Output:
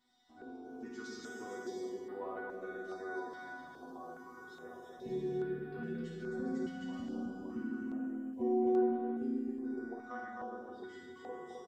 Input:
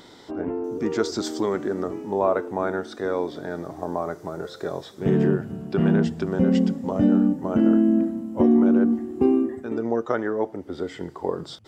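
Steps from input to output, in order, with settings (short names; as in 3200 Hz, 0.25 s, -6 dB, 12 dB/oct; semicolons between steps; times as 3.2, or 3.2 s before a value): gate -42 dBFS, range -7 dB; resonator bank B3 fifth, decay 0.27 s; bouncing-ball echo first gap 0.26 s, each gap 0.6×, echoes 5; reverb RT60 1.0 s, pre-delay 42 ms, DRR 1.5 dB; stepped notch 2.4 Hz 420–6400 Hz; gain -4 dB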